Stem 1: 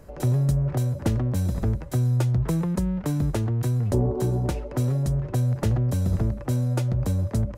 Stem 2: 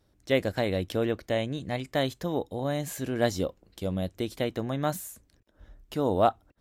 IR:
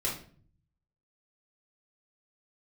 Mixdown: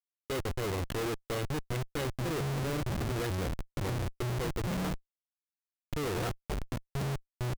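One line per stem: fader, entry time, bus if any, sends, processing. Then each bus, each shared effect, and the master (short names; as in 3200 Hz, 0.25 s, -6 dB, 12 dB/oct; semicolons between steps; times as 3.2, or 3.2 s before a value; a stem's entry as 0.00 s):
+3.0 dB, 1.95 s, muted 4.93–6.16, no send, HPF 87 Hz 12 dB/oct; dB-ramp tremolo decaying 2.2 Hz, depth 35 dB
-7.0 dB, 0.00 s, no send, high shelf 7000 Hz -8.5 dB; comb 2.4 ms, depth 95%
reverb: off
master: bell 840 Hz -13.5 dB 0.53 oct; Schmitt trigger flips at -36.5 dBFS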